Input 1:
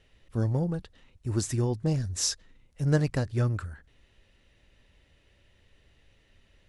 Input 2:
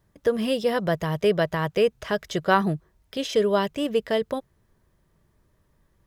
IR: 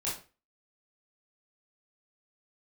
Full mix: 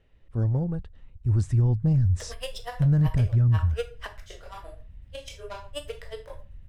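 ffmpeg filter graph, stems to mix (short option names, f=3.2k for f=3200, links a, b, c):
-filter_complex "[0:a]lowpass=f=1.2k:p=1,asubboost=boost=11.5:cutoff=130,volume=-0.5dB,asplit=2[a][b];[1:a]highpass=f=530:w=0.5412,highpass=f=530:w=1.3066,asoftclip=type=tanh:threshold=-23dB,aeval=exprs='val(0)*pow(10,-37*(0.5-0.5*cos(2*PI*8.1*n/s))/20)':c=same,adelay=1950,volume=0.5dB,asplit=2[c][d];[d]volume=-10dB[e];[b]apad=whole_len=353271[f];[c][f]sidechaingate=range=-33dB:threshold=-41dB:ratio=16:detection=peak[g];[2:a]atrim=start_sample=2205[h];[e][h]afir=irnorm=-1:irlink=0[i];[a][g][i]amix=inputs=3:normalize=0,equalizer=f=8.6k:w=3.6:g=6,alimiter=limit=-15.5dB:level=0:latency=1:release=30"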